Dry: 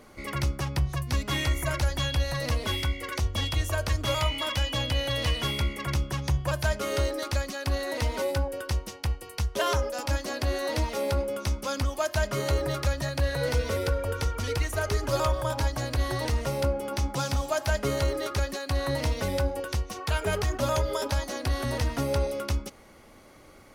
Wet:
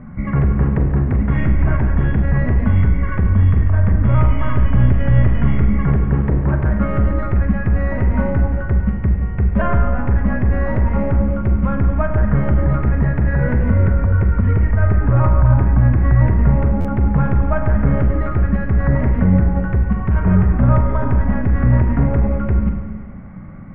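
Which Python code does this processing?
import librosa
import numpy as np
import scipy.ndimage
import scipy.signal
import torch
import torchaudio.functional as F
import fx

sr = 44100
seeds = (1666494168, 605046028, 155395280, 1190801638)

p1 = fx.tracing_dist(x, sr, depth_ms=0.092)
p2 = fx.low_shelf_res(p1, sr, hz=270.0, db=12.5, q=3.0)
p3 = np.clip(10.0 ** (12.0 / 20.0) * p2, -1.0, 1.0) / 10.0 ** (12.0 / 20.0)
p4 = p3 + fx.echo_single(p3, sr, ms=142, db=-17.5, dry=0)
p5 = fx.dynamic_eq(p4, sr, hz=140.0, q=6.0, threshold_db=-31.0, ratio=4.0, max_db=-7)
p6 = fx.over_compress(p5, sr, threshold_db=-21.0, ratio=-1.0)
p7 = p5 + F.gain(torch.from_numpy(p6), 1.0).numpy()
p8 = scipy.signal.sosfilt(scipy.signal.butter(6, 2000.0, 'lowpass', fs=sr, output='sos'), p7)
p9 = fx.rev_schroeder(p8, sr, rt60_s=1.5, comb_ms=33, drr_db=4.0)
p10 = fx.buffer_glitch(p9, sr, at_s=(16.8,), block=512, repeats=3)
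y = F.gain(torch.from_numpy(p10), -1.5).numpy()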